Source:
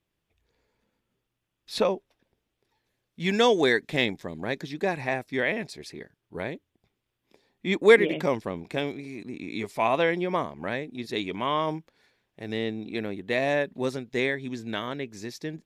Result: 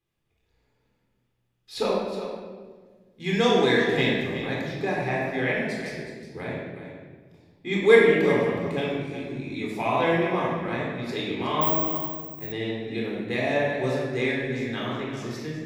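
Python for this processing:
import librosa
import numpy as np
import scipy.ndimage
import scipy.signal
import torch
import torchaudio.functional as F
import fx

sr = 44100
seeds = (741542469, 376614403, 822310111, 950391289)

y = x + 10.0 ** (-11.0 / 20.0) * np.pad(x, (int(368 * sr / 1000.0), 0))[:len(x)]
y = fx.room_shoebox(y, sr, seeds[0], volume_m3=1300.0, walls='mixed', distance_m=3.9)
y = fx.resample_bad(y, sr, factor=2, down='filtered', up='zero_stuff', at=(11.61, 12.52))
y = y * 10.0 ** (-6.5 / 20.0)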